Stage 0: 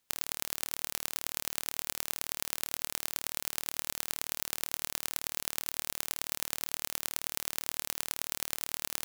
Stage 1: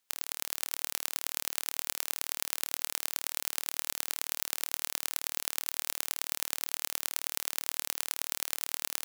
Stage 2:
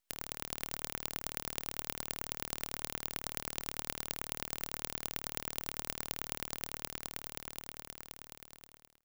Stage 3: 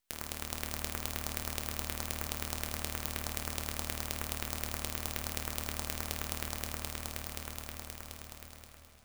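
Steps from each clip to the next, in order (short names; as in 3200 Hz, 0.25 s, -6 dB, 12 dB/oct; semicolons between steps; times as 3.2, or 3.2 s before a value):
low shelf 350 Hz -11 dB; AGC; gain -1 dB
ending faded out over 2.76 s; frequency shift +53 Hz; half-wave rectifier; gain -2.5 dB
on a send at -3.5 dB: reverb RT60 1.5 s, pre-delay 6 ms; on the sum: warbling echo 0.469 s, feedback 78%, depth 111 cents, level -21 dB; gain +1 dB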